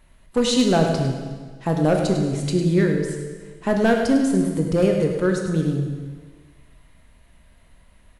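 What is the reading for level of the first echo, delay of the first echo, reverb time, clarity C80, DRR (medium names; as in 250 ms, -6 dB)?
-9.0 dB, 102 ms, 1.5 s, 4.5 dB, 2.0 dB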